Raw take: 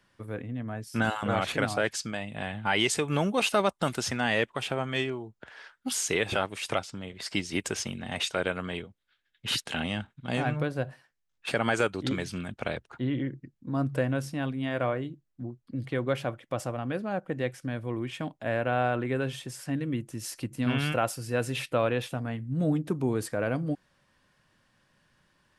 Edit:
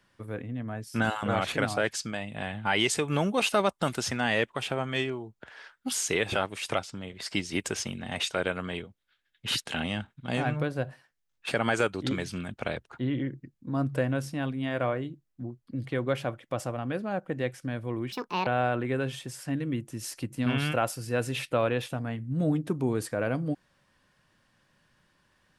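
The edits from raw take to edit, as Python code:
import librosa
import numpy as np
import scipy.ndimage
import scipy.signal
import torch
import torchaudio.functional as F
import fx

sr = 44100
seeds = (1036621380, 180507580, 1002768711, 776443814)

y = fx.edit(x, sr, fx.speed_span(start_s=18.12, length_s=0.55, speed=1.59), tone=tone)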